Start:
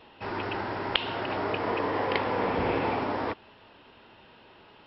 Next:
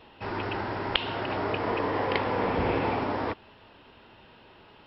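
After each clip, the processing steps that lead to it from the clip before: low shelf 120 Hz +6 dB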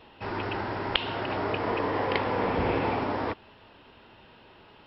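nothing audible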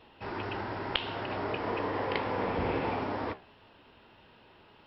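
flange 1.6 Hz, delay 8.7 ms, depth 6.7 ms, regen -75%

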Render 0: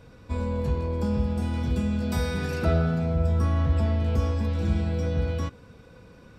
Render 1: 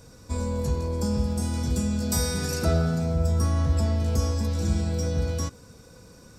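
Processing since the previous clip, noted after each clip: resonant high shelf 4300 Hz +13 dB, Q 1.5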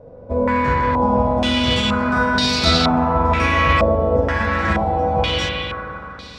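spectral whitening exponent 0.6; spring tank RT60 2.9 s, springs 40/52 ms, chirp 35 ms, DRR -2 dB; stepped low-pass 2.1 Hz 590–4200 Hz; gain +4.5 dB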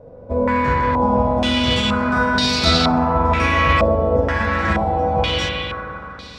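thin delay 65 ms, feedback 56%, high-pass 5200 Hz, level -22.5 dB

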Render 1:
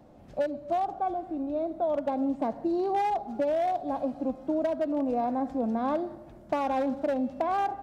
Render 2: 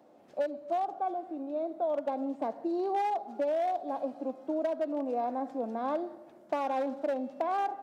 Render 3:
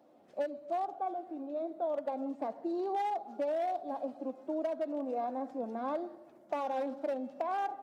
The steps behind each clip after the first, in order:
Chebyshev high-pass 360 Hz, order 2; gain -2.5 dB
bin magnitudes rounded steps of 15 dB; gain -3 dB

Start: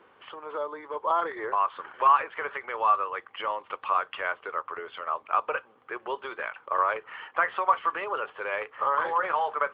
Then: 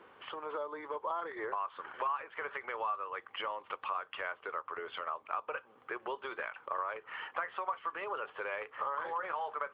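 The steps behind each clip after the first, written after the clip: compressor 3:1, threshold -37 dBFS, peak gain reduction 15.5 dB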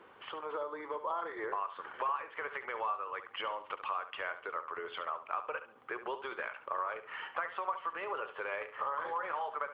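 flutter echo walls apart 12 m, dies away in 0.36 s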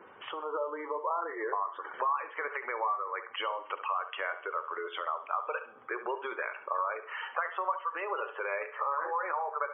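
spectral gate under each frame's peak -20 dB strong; two-slope reverb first 0.53 s, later 4.5 s, from -21 dB, DRR 13.5 dB; gain +4 dB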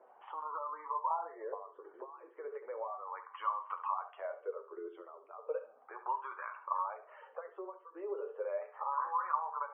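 wah 0.35 Hz 350–1100 Hz, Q 6.1; flange 0.43 Hz, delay 7.7 ms, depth 4.6 ms, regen -43%; gain +7.5 dB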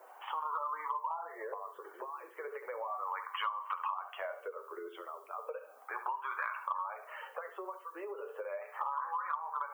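compressor 12:1, threshold -41 dBFS, peak gain reduction 15 dB; tilt +5 dB/oct; gain +8 dB

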